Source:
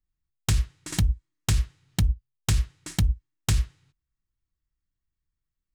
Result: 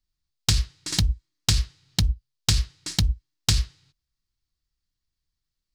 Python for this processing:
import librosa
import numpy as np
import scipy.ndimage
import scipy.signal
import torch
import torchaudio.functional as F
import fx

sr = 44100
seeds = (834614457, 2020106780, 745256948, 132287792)

y = fx.peak_eq(x, sr, hz=4600.0, db=13.0, octaves=1.0)